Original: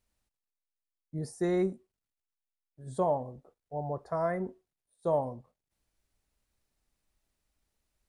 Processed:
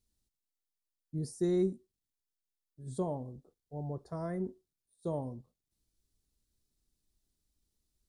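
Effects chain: band shelf 1200 Hz -11.5 dB 2.7 oct

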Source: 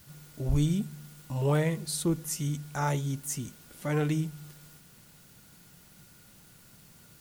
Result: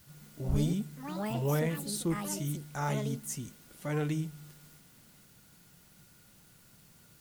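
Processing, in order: echoes that change speed 0.16 s, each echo +6 st, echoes 2, each echo -6 dB; gain -4 dB

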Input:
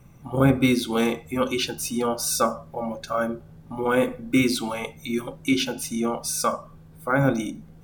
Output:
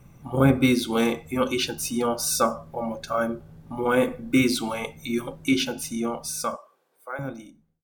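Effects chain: ending faded out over 2.34 s; 6.56–7.19 HPF 420 Hz 24 dB/oct

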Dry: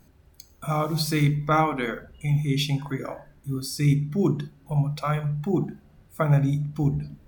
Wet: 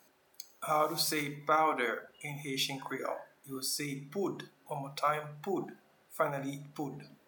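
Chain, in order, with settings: dynamic EQ 3100 Hz, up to -4 dB, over -44 dBFS, Q 0.93; limiter -16.5 dBFS, peak gain reduction 7 dB; HPF 490 Hz 12 dB/oct

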